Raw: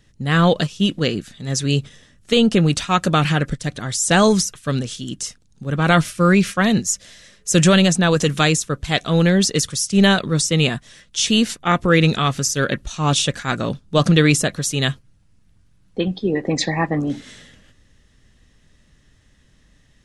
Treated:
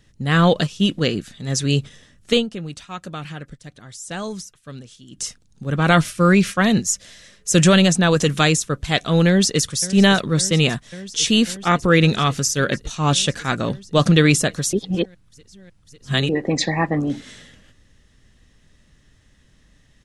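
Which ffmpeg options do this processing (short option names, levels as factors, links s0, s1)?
-filter_complex "[0:a]asplit=2[s0][s1];[s1]afade=t=in:st=9.27:d=0.01,afade=t=out:st=9.69:d=0.01,aecho=0:1:550|1100|1650|2200|2750|3300|3850|4400|4950|5500|6050|6600:0.158489|0.134716|0.114509|0.0973323|0.0827324|0.0703226|0.0597742|0.050808|0.0431868|0.0367088|0.0312025|0.0265221[s2];[s0][s2]amix=inputs=2:normalize=0,asplit=5[s3][s4][s5][s6][s7];[s3]atrim=end=2.48,asetpts=PTS-STARTPTS,afade=t=out:st=2.36:d=0.12:c=qua:silence=0.177828[s8];[s4]atrim=start=2.48:end=5.09,asetpts=PTS-STARTPTS,volume=0.178[s9];[s5]atrim=start=5.09:end=14.732,asetpts=PTS-STARTPTS,afade=t=in:d=0.12:c=qua:silence=0.177828[s10];[s6]atrim=start=14.728:end=16.292,asetpts=PTS-STARTPTS,areverse[s11];[s7]atrim=start=16.288[s12];[s8][s9][s10]concat=n=3:v=0:a=1[s13];[s13][s11]acrossfade=d=0.004:c1=hsin:c2=hsin[s14];[s14][s12]acrossfade=d=0.004:c1=hsin:c2=hsin"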